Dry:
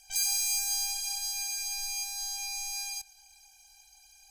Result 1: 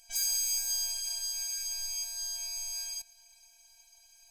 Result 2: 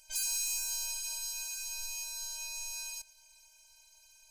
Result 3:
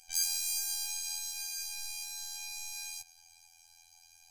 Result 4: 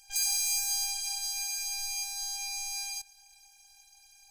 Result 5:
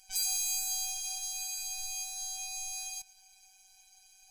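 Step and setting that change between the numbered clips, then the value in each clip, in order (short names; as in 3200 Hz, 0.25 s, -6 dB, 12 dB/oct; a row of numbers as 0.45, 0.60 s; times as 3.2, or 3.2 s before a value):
robotiser, frequency: 230, 310, 84, 400, 190 Hz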